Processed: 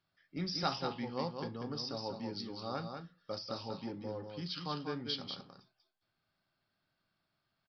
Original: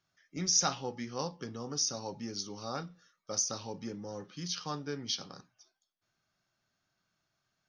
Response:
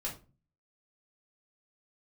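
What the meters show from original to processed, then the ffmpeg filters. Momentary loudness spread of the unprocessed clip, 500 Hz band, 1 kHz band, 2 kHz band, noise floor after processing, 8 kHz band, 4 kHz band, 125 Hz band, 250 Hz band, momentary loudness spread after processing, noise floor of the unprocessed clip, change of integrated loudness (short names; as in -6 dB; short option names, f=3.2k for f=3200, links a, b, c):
15 LU, 0.0 dB, -0.5 dB, -1.5 dB, -84 dBFS, -26.5 dB, -4.0 dB, -0.5 dB, 0.0 dB, 9 LU, -84 dBFS, -5.0 dB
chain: -filter_complex "[0:a]aecho=1:1:192:0.501,aresample=11025,aresample=44100,asplit=2[a][b];[1:a]atrim=start_sample=2205,atrim=end_sample=3528,lowpass=f=1.9k:w=0.5412,lowpass=f=1.9k:w=1.3066[c];[b][c]afir=irnorm=-1:irlink=0,volume=-14dB[d];[a][d]amix=inputs=2:normalize=0,volume=-2dB"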